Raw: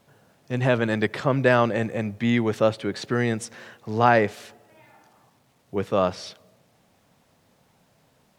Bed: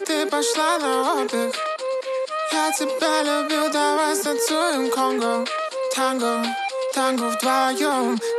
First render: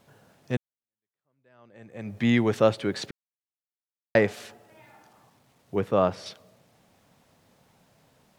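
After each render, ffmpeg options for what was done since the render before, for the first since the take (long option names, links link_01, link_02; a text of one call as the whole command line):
ffmpeg -i in.wav -filter_complex "[0:a]asettb=1/sr,asplit=3[link_01][link_02][link_03];[link_01]atrim=end=5.804[link_04];[link_02]atrim=start=5.8:end=6.26,asetpts=PTS-STARTPTS,afade=type=in:duration=0.004:curve=qsin,afade=type=out:start_time=0.456:duration=0.004:curve=qsin,equalizer=frequency=5600:width=0.5:gain=-7.5[link_05];[link_03]atrim=start=6.256[link_06];[link_04][link_05]acrossfade=duration=0.004:curve1=hsin:curve2=qsin[link_07];[link_07][link_06]acrossfade=duration=0.004:curve1=qsin:curve2=hsin,asplit=4[link_08][link_09][link_10][link_11];[link_08]atrim=end=0.57,asetpts=PTS-STARTPTS,afade=type=out:start_time=0.566:duration=0.004:curve=hsin[link_12];[link_09]atrim=start=0.57:end=3.11,asetpts=PTS-STARTPTS,afade=type=in:duration=1.61:curve=exp,afade=type=out:start_time=2.536:duration=0.004:curve=hsin[link_13];[link_10]atrim=start=3.11:end=4.15,asetpts=PTS-STARTPTS,volume=0[link_14];[link_11]atrim=start=4.15,asetpts=PTS-STARTPTS,afade=type=in:duration=0.004:curve=hsin[link_15];[link_12][link_13][link_14][link_15]concat=n=4:v=0:a=1" out.wav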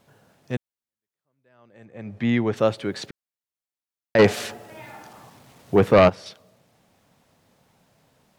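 ffmpeg -i in.wav -filter_complex "[0:a]asettb=1/sr,asplit=3[link_01][link_02][link_03];[link_01]atrim=end=1.854[link_04];[link_02]atrim=start=1.85:end=2.57,asetpts=PTS-STARTPTS,afade=type=in:duration=0.004:curve=qsin,afade=type=out:start_time=0.716:duration=0.004:curve=qsin,aemphasis=mode=reproduction:type=50fm[link_05];[link_03]atrim=start=2.566[link_06];[link_04][link_05]acrossfade=duration=0.004:curve1=hsin:curve2=qsin[link_07];[link_07][link_06]acrossfade=duration=0.004:curve1=qsin:curve2=hsin,asplit=3[link_08][link_09][link_10];[link_08]afade=type=out:start_time=4.18:duration=0.02[link_11];[link_09]aeval=exprs='0.398*sin(PI/2*2.51*val(0)/0.398)':channel_layout=same,afade=type=in:start_time=4.18:duration=0.02,afade=type=out:start_time=6.08:duration=0.02[link_12];[link_10]afade=type=in:start_time=6.08:duration=0.02[link_13];[link_11][link_12][link_13]amix=inputs=3:normalize=0" out.wav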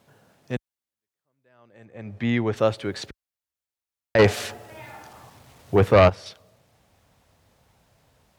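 ffmpeg -i in.wav -af "asubboost=boost=7.5:cutoff=67,highpass=49" out.wav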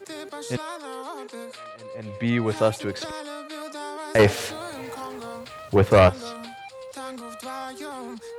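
ffmpeg -i in.wav -i bed.wav -filter_complex "[1:a]volume=-15dB[link_01];[0:a][link_01]amix=inputs=2:normalize=0" out.wav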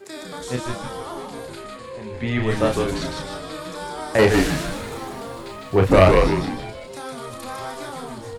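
ffmpeg -i in.wav -filter_complex "[0:a]asplit=2[link_01][link_02];[link_02]adelay=32,volume=-4.5dB[link_03];[link_01][link_03]amix=inputs=2:normalize=0,asplit=2[link_04][link_05];[link_05]asplit=6[link_06][link_07][link_08][link_09][link_10][link_11];[link_06]adelay=153,afreqshift=-130,volume=-3dB[link_12];[link_07]adelay=306,afreqshift=-260,volume=-9.7dB[link_13];[link_08]adelay=459,afreqshift=-390,volume=-16.5dB[link_14];[link_09]adelay=612,afreqshift=-520,volume=-23.2dB[link_15];[link_10]adelay=765,afreqshift=-650,volume=-30dB[link_16];[link_11]adelay=918,afreqshift=-780,volume=-36.7dB[link_17];[link_12][link_13][link_14][link_15][link_16][link_17]amix=inputs=6:normalize=0[link_18];[link_04][link_18]amix=inputs=2:normalize=0" out.wav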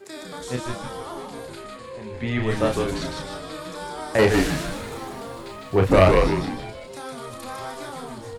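ffmpeg -i in.wav -af "volume=-2dB" out.wav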